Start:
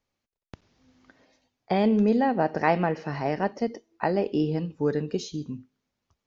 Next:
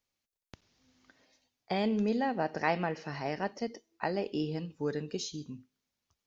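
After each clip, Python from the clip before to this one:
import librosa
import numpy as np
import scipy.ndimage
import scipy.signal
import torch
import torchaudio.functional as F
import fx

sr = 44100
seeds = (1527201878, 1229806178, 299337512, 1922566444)

y = fx.high_shelf(x, sr, hz=2300.0, db=10.5)
y = F.gain(torch.from_numpy(y), -8.5).numpy()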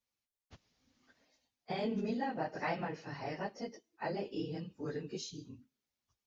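y = fx.phase_scramble(x, sr, seeds[0], window_ms=50)
y = F.gain(torch.from_numpy(y), -5.5).numpy()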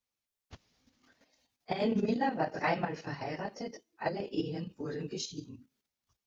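y = fx.level_steps(x, sr, step_db=9)
y = F.gain(torch.from_numpy(y), 8.0).numpy()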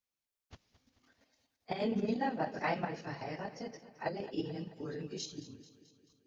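y = fx.echo_feedback(x, sr, ms=218, feedback_pct=57, wet_db=-15.5)
y = F.gain(torch.from_numpy(y), -3.5).numpy()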